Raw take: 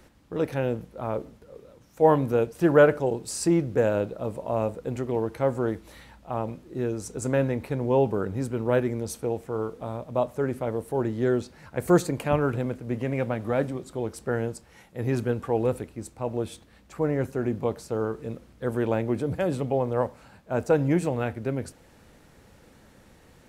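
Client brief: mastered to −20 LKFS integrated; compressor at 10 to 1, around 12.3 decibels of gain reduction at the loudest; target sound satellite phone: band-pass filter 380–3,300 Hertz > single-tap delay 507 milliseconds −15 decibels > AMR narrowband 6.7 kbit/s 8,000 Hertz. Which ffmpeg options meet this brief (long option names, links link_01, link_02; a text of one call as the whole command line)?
ffmpeg -i in.wav -af "acompressor=threshold=-25dB:ratio=10,highpass=380,lowpass=3300,aecho=1:1:507:0.178,volume=16dB" -ar 8000 -c:a libopencore_amrnb -b:a 6700 out.amr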